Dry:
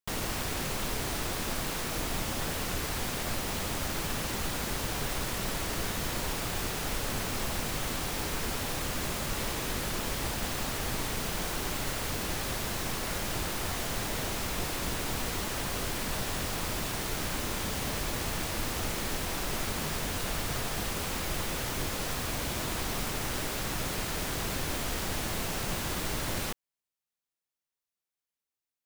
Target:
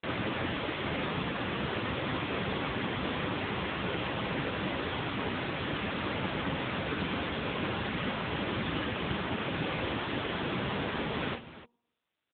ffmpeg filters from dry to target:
ffmpeg -i in.wav -filter_complex "[0:a]asetrate=103194,aresample=44100,bandreject=frequency=730:width=15,bandreject=frequency=236.8:width_type=h:width=4,bandreject=frequency=473.6:width_type=h:width=4,bandreject=frequency=710.4:width_type=h:width=4,bandreject=frequency=947.2:width_type=h:width=4,asplit=2[link_01][link_02];[link_02]aecho=0:1:43|47|302:0.335|0.335|0.188[link_03];[link_01][link_03]amix=inputs=2:normalize=0,volume=5.5dB" -ar 8000 -c:a libopencore_amrnb -b:a 6700 out.amr

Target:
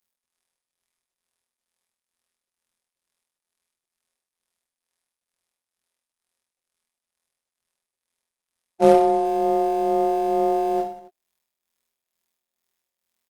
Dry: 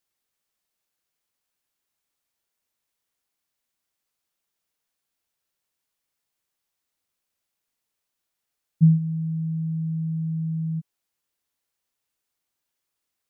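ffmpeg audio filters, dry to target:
ffmpeg -i in.wav -filter_complex "[0:a]afftfilt=real='hypot(re,im)*cos(PI*b)':imag='0':win_size=2048:overlap=0.75,aecho=1:1:6.2:0.37,bandreject=frequency=127:width_type=h:width=4,bandreject=frequency=254:width_type=h:width=4,bandreject=frequency=381:width_type=h:width=4,bandreject=frequency=508:width_type=h:width=4,bandreject=frequency=635:width_type=h:width=4,bandreject=frequency=762:width_type=h:width=4,bandreject=frequency=889:width_type=h:width=4,acrossover=split=150[link_01][link_02];[link_01]acrusher=bits=2:mode=log:mix=0:aa=0.000001[link_03];[link_02]tremolo=f=2.2:d=0.66[link_04];[link_03][link_04]amix=inputs=2:normalize=0,aeval=exprs='clip(val(0),-1,0.0188)':channel_layout=same,aeval=exprs='val(0)*sin(2*PI*540*n/s)':channel_layout=same,asplit=2[link_05][link_06];[link_06]aecho=0:1:30|69|119.7|185.6|271.3:0.631|0.398|0.251|0.158|0.1[link_07];[link_05][link_07]amix=inputs=2:normalize=0,volume=8dB" -ar 48000 -c:a libopus -b:a 32k out.opus

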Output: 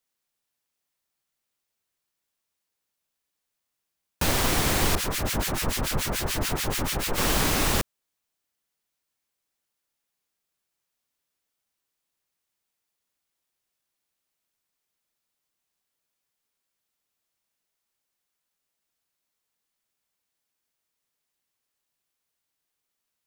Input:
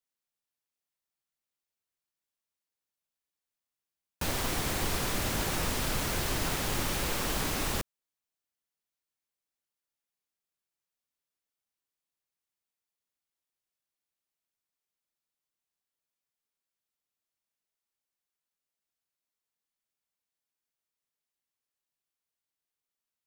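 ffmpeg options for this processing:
ffmpeg -i in.wav -filter_complex "[0:a]asettb=1/sr,asplit=3[link_01][link_02][link_03];[link_01]atrim=end=4.954[link_04];[link_02]atrim=start=4.95:end=7.18,asetpts=PTS-STARTPTS,afade=type=in:duration=0.004:curve=qsin,afade=type=out:start_time=2.226:duration=0.004:curve=qsin,acrossover=split=1400[link_05][link_06];[link_05]aeval=exprs='val(0)*(1-1/2+1/2*cos(2*PI*6.9*n/s))':channel_layout=same[link_07];[link_06]aeval=exprs='val(0)*(1-1/2-1/2*cos(2*PI*6.9*n/s))':channel_layout=same[link_08];[link_07][link_08]amix=inputs=2:normalize=0[link_09];[link_03]atrim=start=7.176[link_10];[link_04][link_09]acrossfade=duration=0.004:curve1=hsin:curve2=qsin[link_11];[link_11][link_10]acrossfade=duration=0.004:curve1=qsin:curve2=hsin,volume=8dB" out.wav

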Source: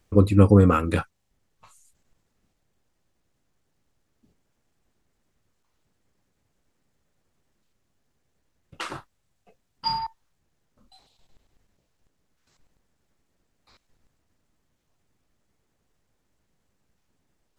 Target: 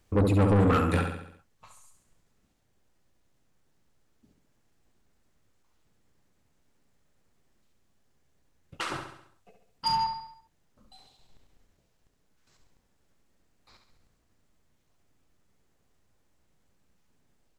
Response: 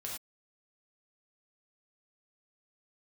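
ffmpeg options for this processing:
-filter_complex "[0:a]asplit=2[link_01][link_02];[link_02]aecho=0:1:68|136|204|272|340|408:0.447|0.228|0.116|0.0593|0.0302|0.0154[link_03];[link_01][link_03]amix=inputs=2:normalize=0,asoftclip=type=tanh:threshold=-18dB"

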